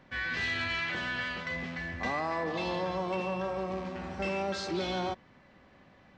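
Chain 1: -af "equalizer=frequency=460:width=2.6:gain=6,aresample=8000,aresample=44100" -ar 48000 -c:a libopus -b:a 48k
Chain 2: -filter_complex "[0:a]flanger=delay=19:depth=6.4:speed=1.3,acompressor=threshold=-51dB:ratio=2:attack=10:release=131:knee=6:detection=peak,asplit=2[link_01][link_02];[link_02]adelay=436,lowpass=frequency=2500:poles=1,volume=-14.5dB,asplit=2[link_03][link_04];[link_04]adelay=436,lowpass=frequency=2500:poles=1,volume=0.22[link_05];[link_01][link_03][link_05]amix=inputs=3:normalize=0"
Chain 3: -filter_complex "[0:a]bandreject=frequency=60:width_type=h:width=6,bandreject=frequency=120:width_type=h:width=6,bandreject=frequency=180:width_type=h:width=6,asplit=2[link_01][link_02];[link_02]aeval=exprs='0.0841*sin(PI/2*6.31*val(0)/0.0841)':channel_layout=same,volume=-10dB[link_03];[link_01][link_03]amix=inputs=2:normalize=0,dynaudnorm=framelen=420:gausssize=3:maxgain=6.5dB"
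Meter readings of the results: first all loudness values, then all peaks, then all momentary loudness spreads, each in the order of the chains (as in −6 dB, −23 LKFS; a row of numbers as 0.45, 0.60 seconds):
−32.5, −45.0, −23.5 LKFS; −20.0, −32.5, −14.0 dBFS; 5, 12, 13 LU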